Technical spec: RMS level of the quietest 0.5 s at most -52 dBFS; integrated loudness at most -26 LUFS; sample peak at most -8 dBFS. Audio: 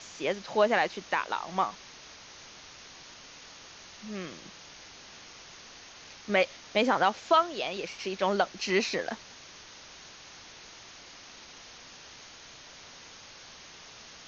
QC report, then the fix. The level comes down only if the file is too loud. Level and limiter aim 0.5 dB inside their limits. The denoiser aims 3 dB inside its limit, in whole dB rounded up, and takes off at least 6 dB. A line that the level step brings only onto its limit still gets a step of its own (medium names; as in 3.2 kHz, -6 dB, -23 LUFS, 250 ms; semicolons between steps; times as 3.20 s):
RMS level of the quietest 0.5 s -50 dBFS: fail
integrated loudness -29.0 LUFS: pass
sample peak -10.5 dBFS: pass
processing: noise reduction 6 dB, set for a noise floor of -50 dBFS